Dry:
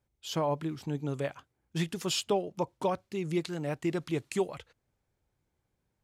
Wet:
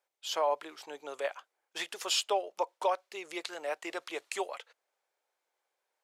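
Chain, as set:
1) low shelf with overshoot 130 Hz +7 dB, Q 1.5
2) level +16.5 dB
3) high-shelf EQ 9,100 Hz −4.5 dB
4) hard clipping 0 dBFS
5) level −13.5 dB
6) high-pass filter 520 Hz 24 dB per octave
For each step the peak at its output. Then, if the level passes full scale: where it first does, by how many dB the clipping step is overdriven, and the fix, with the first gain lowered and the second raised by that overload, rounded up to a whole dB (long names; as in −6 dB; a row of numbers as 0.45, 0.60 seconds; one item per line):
−19.0, −2.5, −2.5, −2.5, −16.0, −17.5 dBFS
no step passes full scale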